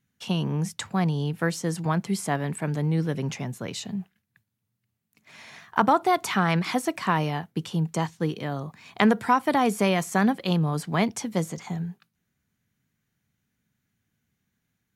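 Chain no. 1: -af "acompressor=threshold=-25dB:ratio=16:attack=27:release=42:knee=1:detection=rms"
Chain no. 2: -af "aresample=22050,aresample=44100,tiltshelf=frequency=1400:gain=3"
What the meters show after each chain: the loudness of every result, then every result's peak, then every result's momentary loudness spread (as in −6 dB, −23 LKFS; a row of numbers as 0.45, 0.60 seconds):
−29.0, −24.0 LKFS; −4.5, −2.5 dBFS; 7, 10 LU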